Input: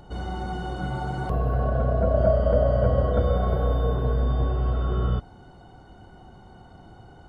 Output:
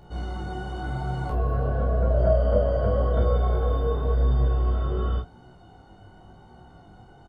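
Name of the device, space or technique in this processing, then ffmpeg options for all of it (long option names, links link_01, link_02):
double-tracked vocal: -filter_complex "[0:a]asplit=2[link_01][link_02];[link_02]adelay=30,volume=-4.5dB[link_03];[link_01][link_03]amix=inputs=2:normalize=0,flanger=delay=16.5:depth=4.8:speed=0.91"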